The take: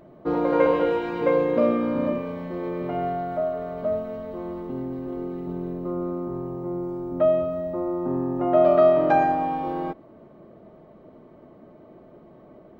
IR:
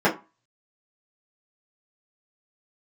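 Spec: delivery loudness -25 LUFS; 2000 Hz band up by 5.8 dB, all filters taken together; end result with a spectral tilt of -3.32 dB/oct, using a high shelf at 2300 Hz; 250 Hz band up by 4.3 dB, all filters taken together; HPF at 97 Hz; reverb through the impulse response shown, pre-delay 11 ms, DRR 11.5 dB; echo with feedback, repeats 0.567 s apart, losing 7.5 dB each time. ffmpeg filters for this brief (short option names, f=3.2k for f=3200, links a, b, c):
-filter_complex "[0:a]highpass=97,equalizer=f=250:t=o:g=5.5,equalizer=f=2k:t=o:g=4.5,highshelf=f=2.3k:g=6,aecho=1:1:567|1134|1701|2268|2835:0.422|0.177|0.0744|0.0312|0.0131,asplit=2[a][b];[1:a]atrim=start_sample=2205,adelay=11[c];[b][c]afir=irnorm=-1:irlink=0,volume=-30.5dB[d];[a][d]amix=inputs=2:normalize=0,volume=-5dB"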